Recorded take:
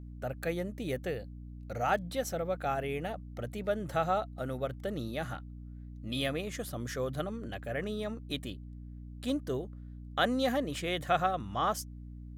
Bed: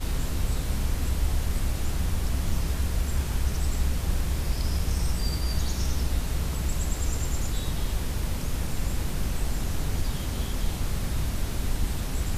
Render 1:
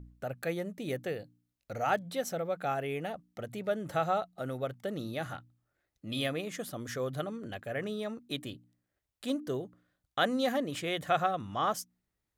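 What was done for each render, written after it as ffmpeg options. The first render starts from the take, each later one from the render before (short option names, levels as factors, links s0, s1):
-af "bandreject=f=60:t=h:w=4,bandreject=f=120:t=h:w=4,bandreject=f=180:t=h:w=4,bandreject=f=240:t=h:w=4,bandreject=f=300:t=h:w=4"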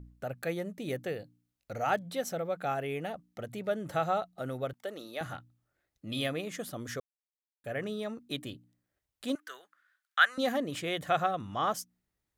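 -filter_complex "[0:a]asettb=1/sr,asplit=3[s0][s1][s2];[s0]atrim=end=4.734[s3];[s1]atrim=start=4.73:end=5.21,asetpts=PTS-STARTPTS,afade=t=in:d=0.004:c=qsin,afade=t=out:st=0.476:d=0.004:c=qsin,highpass=430[s4];[s2]atrim=start=5.206[s5];[s3][s4]acrossfade=d=0.004:c1=hsin:c2=qsin[s6];[s6][s5]acrossfade=d=0.004:c1=qsin:c2=hsin,asettb=1/sr,asplit=3[s7][s8][s9];[s7]atrim=end=9.354[s10];[s8]atrim=start=9.35:end=10.38,asetpts=PTS-STARTPTS,afade=t=in:d=0.004:c=qsin,afade=t=out:st=1.026:d=0.004:c=qsin,highpass=f=1500:t=q:w=3.4[s11];[s9]atrim=start=10.376[s12];[s10][s11]acrossfade=d=0.004:c1=hsin:c2=qsin[s13];[s13][s12]acrossfade=d=0.004:c1=qsin:c2=hsin,asplit=3[s14][s15][s16];[s14]atrim=end=7,asetpts=PTS-STARTPTS,afade=t=out:st=6.996:d=0.004:c=hsin[s17];[s15]atrim=start=7:end=7.64,asetpts=PTS-STARTPTS,volume=0[s18];[s16]atrim=start=7.64,asetpts=PTS-STARTPTS,afade=t=in:d=0.004:c=hsin[s19];[s17][s18][s19]concat=n=3:v=0:a=1"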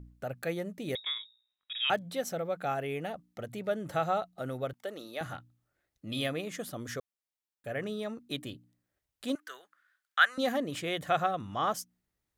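-filter_complex "[0:a]asettb=1/sr,asplit=3[s0][s1][s2];[s0]atrim=end=0.954[s3];[s1]atrim=start=0.95:end=1.9,asetpts=PTS-STARTPTS,afade=t=in:d=0.004:c=qsin,afade=t=out:st=0.946:d=0.004:c=qsin,lowpass=f=3300:t=q:w=0.5098,lowpass=f=3300:t=q:w=0.6013,lowpass=f=3300:t=q:w=0.9,lowpass=f=3300:t=q:w=2.563,afreqshift=-3900[s4];[s2]atrim=start=1.896[s5];[s3][s4]acrossfade=d=0.004:c1=hsin:c2=qsin[s6];[s6][s5]acrossfade=d=0.004:c1=qsin:c2=hsin"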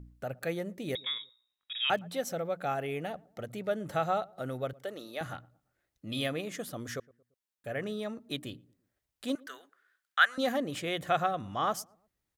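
-filter_complex "[0:a]asplit=2[s0][s1];[s1]adelay=114,lowpass=f=900:p=1,volume=0.0708,asplit=2[s2][s3];[s3]adelay=114,lowpass=f=900:p=1,volume=0.47,asplit=2[s4][s5];[s5]adelay=114,lowpass=f=900:p=1,volume=0.47[s6];[s0][s2][s4][s6]amix=inputs=4:normalize=0"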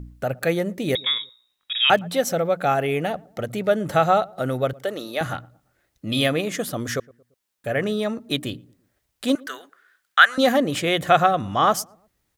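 -af "volume=3.98,alimiter=limit=0.891:level=0:latency=1"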